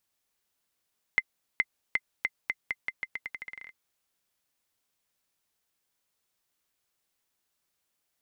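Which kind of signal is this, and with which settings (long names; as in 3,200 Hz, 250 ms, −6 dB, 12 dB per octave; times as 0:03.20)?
bouncing ball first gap 0.42 s, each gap 0.84, 2,070 Hz, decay 44 ms −10.5 dBFS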